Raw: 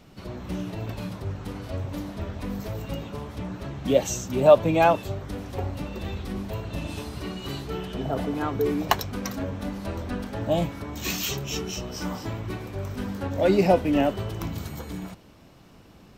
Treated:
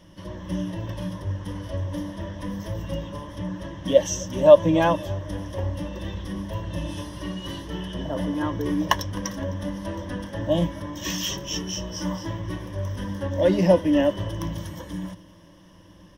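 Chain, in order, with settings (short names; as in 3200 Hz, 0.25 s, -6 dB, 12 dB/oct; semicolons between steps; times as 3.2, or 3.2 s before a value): ripple EQ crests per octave 1.2, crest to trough 14 dB; on a send: feedback echo 0.258 s, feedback 57%, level -23 dB; on the sum: gain -2 dB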